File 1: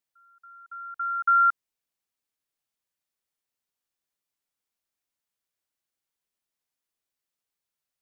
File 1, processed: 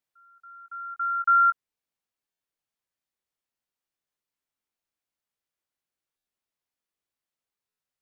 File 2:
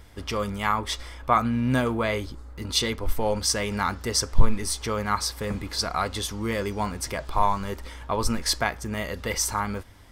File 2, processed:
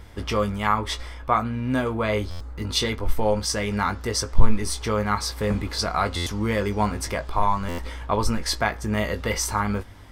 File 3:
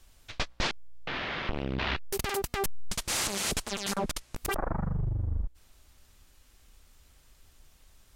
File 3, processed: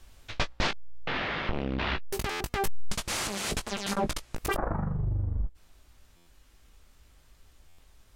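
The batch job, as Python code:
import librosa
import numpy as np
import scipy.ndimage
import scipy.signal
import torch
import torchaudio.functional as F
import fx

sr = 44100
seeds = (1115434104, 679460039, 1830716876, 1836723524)

y = fx.high_shelf(x, sr, hz=4000.0, db=-6.0)
y = fx.rider(y, sr, range_db=3, speed_s=0.5)
y = fx.doubler(y, sr, ms=19.0, db=-8.5)
y = fx.buffer_glitch(y, sr, at_s=(2.3, 6.16, 7.68), block=512, repeats=8)
y = F.gain(torch.from_numpy(y), 2.0).numpy()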